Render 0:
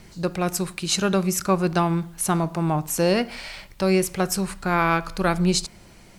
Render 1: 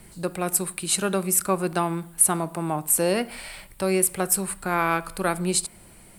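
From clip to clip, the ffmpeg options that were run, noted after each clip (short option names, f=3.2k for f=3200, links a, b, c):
-filter_complex "[0:a]highshelf=f=7.4k:t=q:w=3:g=7,acrossover=split=190[a][b];[a]acompressor=threshold=-39dB:ratio=6[c];[c][b]amix=inputs=2:normalize=0,volume=-2dB"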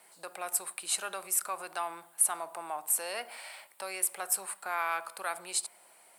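-filter_complex "[0:a]acrossover=split=1200[a][b];[a]alimiter=limit=-24dB:level=0:latency=1[c];[c][b]amix=inputs=2:normalize=0,highpass=f=720:t=q:w=1.7,volume=-7.5dB"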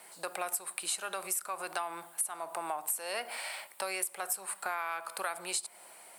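-af "acompressor=threshold=-37dB:ratio=10,volume=6dB"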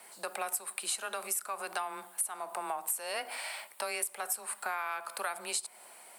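-af "afreqshift=18"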